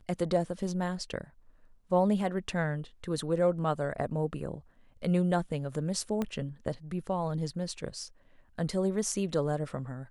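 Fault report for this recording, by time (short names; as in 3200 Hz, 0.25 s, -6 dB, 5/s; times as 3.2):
6.22 pop -19 dBFS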